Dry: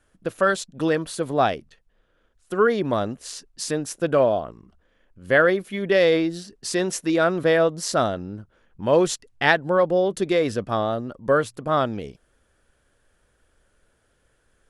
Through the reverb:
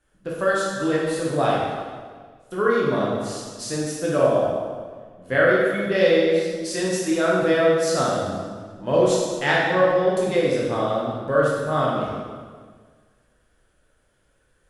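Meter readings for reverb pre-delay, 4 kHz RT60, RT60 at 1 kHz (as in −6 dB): 6 ms, 1.4 s, 1.6 s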